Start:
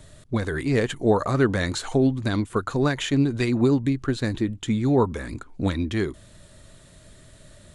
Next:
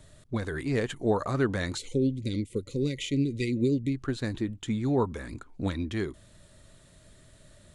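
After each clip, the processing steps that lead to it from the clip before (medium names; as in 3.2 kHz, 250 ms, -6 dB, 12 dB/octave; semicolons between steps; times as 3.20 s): time-frequency box 1.77–3.93 s, 580–1900 Hz -27 dB; trim -6 dB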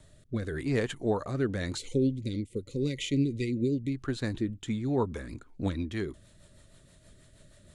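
rotary cabinet horn 0.9 Hz, later 6.3 Hz, at 4.29 s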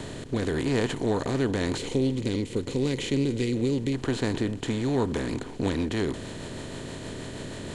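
spectral levelling over time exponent 0.4; trim -1.5 dB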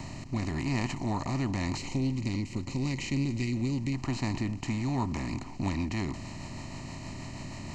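static phaser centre 2.3 kHz, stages 8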